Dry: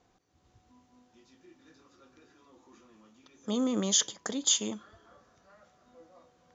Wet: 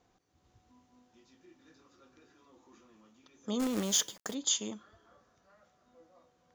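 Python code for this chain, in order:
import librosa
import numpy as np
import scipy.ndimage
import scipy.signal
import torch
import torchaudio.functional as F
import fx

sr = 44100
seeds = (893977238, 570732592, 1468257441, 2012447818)

y = fx.rider(x, sr, range_db=10, speed_s=2.0)
y = fx.quant_companded(y, sr, bits=4, at=(3.59, 4.33), fade=0.02)
y = y * librosa.db_to_amplitude(-3.5)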